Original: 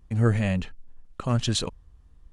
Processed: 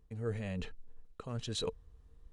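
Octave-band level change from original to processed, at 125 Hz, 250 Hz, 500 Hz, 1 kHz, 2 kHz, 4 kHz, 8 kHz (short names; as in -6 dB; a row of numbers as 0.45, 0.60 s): -16.0, -15.0, -8.0, -14.5, -14.0, -10.5, -13.0 dB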